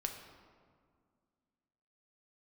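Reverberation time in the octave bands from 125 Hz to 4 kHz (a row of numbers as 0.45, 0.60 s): 2.3, 2.7, 2.1, 1.9, 1.4, 1.0 s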